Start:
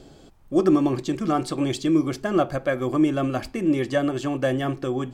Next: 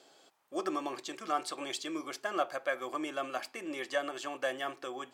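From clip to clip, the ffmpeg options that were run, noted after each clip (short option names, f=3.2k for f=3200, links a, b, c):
-af "highpass=730,volume=-4.5dB"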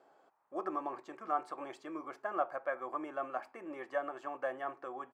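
-af "firequalizer=gain_entry='entry(310,0);entry(910,7);entry(3400,-17)':delay=0.05:min_phase=1,volume=-5.5dB"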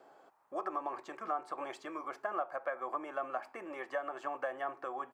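-filter_complex "[0:a]acrossover=split=500|1100[a][b][c];[a]acompressor=threshold=-56dB:ratio=4[d];[b]acompressor=threshold=-42dB:ratio=4[e];[c]acompressor=threshold=-48dB:ratio=4[f];[d][e][f]amix=inputs=3:normalize=0,volume=5.5dB"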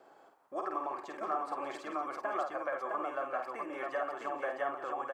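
-af "aecho=1:1:50|177|658:0.562|0.237|0.668"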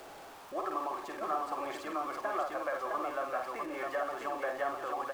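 -af "aeval=exprs='val(0)+0.5*0.00501*sgn(val(0))':c=same"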